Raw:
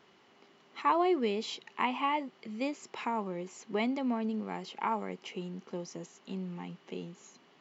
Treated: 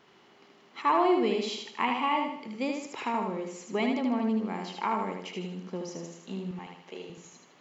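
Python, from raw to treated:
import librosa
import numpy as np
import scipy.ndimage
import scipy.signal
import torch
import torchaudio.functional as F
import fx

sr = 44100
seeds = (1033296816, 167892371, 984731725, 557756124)

p1 = fx.highpass(x, sr, hz=400.0, slope=12, at=(6.51, 7.1))
p2 = p1 + fx.echo_feedback(p1, sr, ms=77, feedback_pct=44, wet_db=-4.0, dry=0)
y = p2 * 10.0 ** (2.0 / 20.0)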